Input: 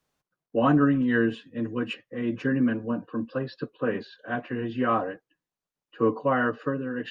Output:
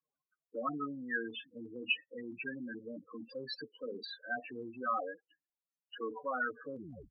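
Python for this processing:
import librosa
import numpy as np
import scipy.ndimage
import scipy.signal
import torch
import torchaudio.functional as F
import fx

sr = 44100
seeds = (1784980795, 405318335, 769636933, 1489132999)

p1 = fx.tape_stop_end(x, sr, length_s=0.37)
p2 = fx.spec_topn(p1, sr, count=8)
p3 = fx.over_compress(p2, sr, threshold_db=-31.0, ratio=-1.0)
p4 = p2 + (p3 * 10.0 ** (-1.0 / 20.0))
p5 = np.diff(p4, prepend=0.0)
y = p5 * 10.0 ** (7.0 / 20.0)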